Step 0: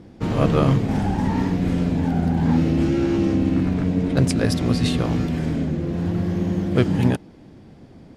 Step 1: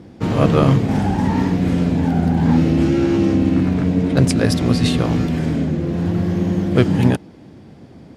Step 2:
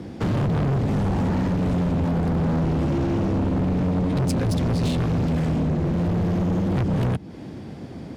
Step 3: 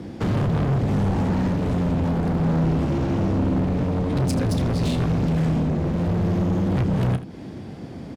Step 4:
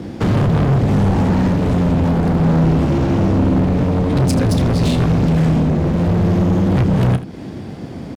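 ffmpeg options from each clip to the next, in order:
-af "highpass=60,volume=1.58"
-filter_complex "[0:a]acrossover=split=190[s0][s1];[s1]acompressor=threshold=0.0398:ratio=6[s2];[s0][s2]amix=inputs=2:normalize=0,volume=17.8,asoftclip=hard,volume=0.0562,volume=1.78"
-af "aecho=1:1:31|80:0.251|0.2"
-af "aeval=exprs='sgn(val(0))*max(abs(val(0))-0.00158,0)':c=same,volume=2.24"

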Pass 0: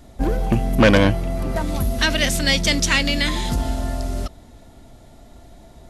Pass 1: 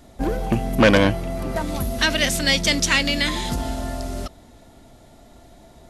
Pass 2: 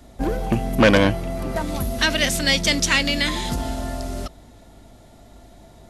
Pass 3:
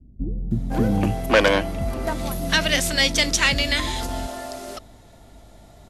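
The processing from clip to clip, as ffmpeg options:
-af "lowshelf=f=120:g=-6.5"
-af "aeval=exprs='val(0)+0.00282*(sin(2*PI*50*n/s)+sin(2*PI*2*50*n/s)/2+sin(2*PI*3*50*n/s)/3+sin(2*PI*4*50*n/s)/4+sin(2*PI*5*50*n/s)/5)':c=same"
-filter_complex "[0:a]acrossover=split=280[s0][s1];[s1]adelay=510[s2];[s0][s2]amix=inputs=2:normalize=0"

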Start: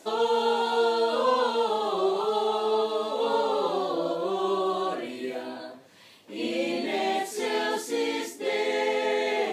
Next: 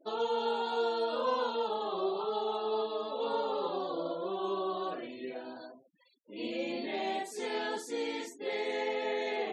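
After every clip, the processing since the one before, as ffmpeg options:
-af "afftfilt=real='re*gte(hypot(re,im),0.00708)':imag='im*gte(hypot(re,im),0.00708)':win_size=1024:overlap=0.75,volume=0.422"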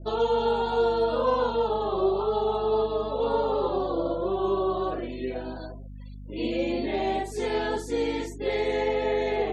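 -af "equalizer=f=330:w=0.91:g=4,aeval=exprs='val(0)+0.00562*(sin(2*PI*50*n/s)+sin(2*PI*2*50*n/s)/2+sin(2*PI*3*50*n/s)/3+sin(2*PI*4*50*n/s)/4+sin(2*PI*5*50*n/s)/5)':c=same,adynamicequalizer=threshold=0.00562:dfrequency=1800:dqfactor=0.7:tfrequency=1800:tqfactor=0.7:attack=5:release=100:ratio=0.375:range=2.5:mode=cutabove:tftype=highshelf,volume=1.88"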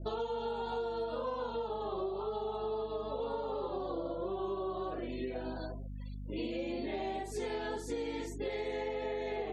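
-af "acompressor=threshold=0.0224:ratio=6,volume=0.841"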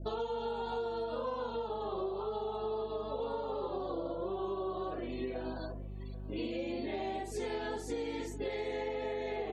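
-filter_complex "[0:a]asplit=2[s0][s1];[s1]adelay=789,lowpass=f=2700:p=1,volume=0.119,asplit=2[s2][s3];[s3]adelay=789,lowpass=f=2700:p=1,volume=0.41,asplit=2[s4][s5];[s5]adelay=789,lowpass=f=2700:p=1,volume=0.41[s6];[s0][s2][s4][s6]amix=inputs=4:normalize=0"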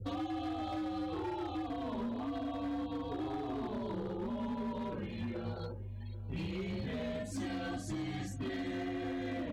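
-af "volume=47.3,asoftclip=hard,volume=0.0211,afreqshift=-150"

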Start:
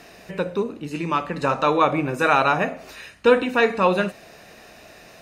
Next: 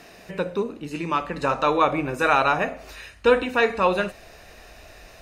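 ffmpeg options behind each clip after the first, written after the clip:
-af "asubboost=boost=10:cutoff=58,volume=0.891"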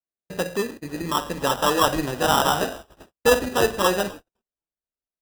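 -filter_complex "[0:a]acrusher=samples=20:mix=1:aa=0.000001,asplit=6[s0][s1][s2][s3][s4][s5];[s1]adelay=258,afreqshift=-73,volume=0.0631[s6];[s2]adelay=516,afreqshift=-146,volume=0.0403[s7];[s3]adelay=774,afreqshift=-219,volume=0.0257[s8];[s4]adelay=1032,afreqshift=-292,volume=0.0166[s9];[s5]adelay=1290,afreqshift=-365,volume=0.0106[s10];[s0][s6][s7][s8][s9][s10]amix=inputs=6:normalize=0,agate=range=0.00141:threshold=0.0158:ratio=16:detection=peak"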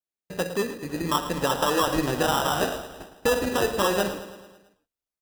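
-filter_complex "[0:a]dynaudnorm=f=470:g=5:m=3.76,alimiter=limit=0.251:level=0:latency=1:release=217,asplit=2[s0][s1];[s1]aecho=0:1:110|220|330|440|550|660:0.224|0.13|0.0753|0.0437|0.0253|0.0147[s2];[s0][s2]amix=inputs=2:normalize=0,volume=0.794"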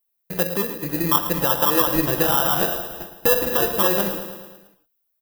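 -filter_complex "[0:a]aecho=1:1:5.9:0.56,aexciter=amount=4.6:drive=7.7:freq=11000,asplit=2[s0][s1];[s1]acompressor=threshold=0.0501:ratio=6,volume=1[s2];[s0][s2]amix=inputs=2:normalize=0,volume=0.794"

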